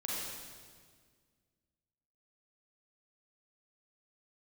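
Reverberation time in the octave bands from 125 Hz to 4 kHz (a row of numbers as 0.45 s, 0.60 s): 2.3 s, 2.2 s, 1.9 s, 1.6 s, 1.6 s, 1.6 s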